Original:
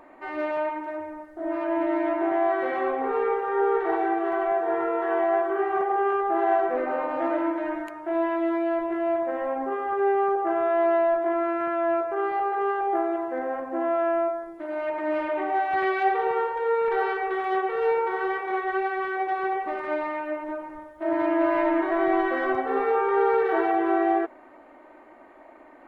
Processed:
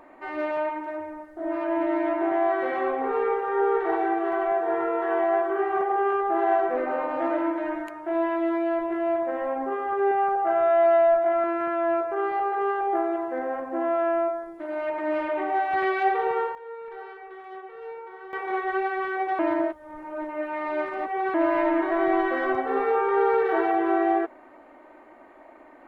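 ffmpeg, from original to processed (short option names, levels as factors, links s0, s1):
-filter_complex "[0:a]asettb=1/sr,asplit=3[s0][s1][s2];[s0]atrim=end=10.114[s3];[s1]atrim=start=10.11:end=11.44,asetpts=PTS-STARTPTS,afade=t=in:d=0.004:c=qsin,afade=t=out:st=1.326:d=0.004:c=qsin,aecho=1:1:1.4:0.54,atrim=end_sample=58653[s4];[s2]atrim=start=11.436[s5];[s3][s4]acrossfade=d=0.004:c1=hsin:c2=qsin[s6];[s6][s5]acrossfade=d=0.004:c1=qsin:c2=hsin,asplit=5[s7][s8][s9][s10][s11];[s7]atrim=end=16.55,asetpts=PTS-STARTPTS,afade=t=out:st=16.14:d=0.41:c=log:silence=0.177828[s12];[s8]atrim=start=16.55:end=18.33,asetpts=PTS-STARTPTS,volume=0.178[s13];[s9]atrim=start=18.33:end=19.392,asetpts=PTS-STARTPTS,afade=t=in:d=0.41:c=log:silence=0.177828[s14];[s10]atrim=start=19.388:end=21.342,asetpts=PTS-STARTPTS,areverse[s15];[s11]atrim=start=21.338[s16];[s12][s13][s14]concat=n=3:v=0:a=1[s17];[s17][s15]acrossfade=d=0.004:c1=hsin:c2=hsin[s18];[s18][s16]acrossfade=d=0.004:c1=hsin:c2=hsin"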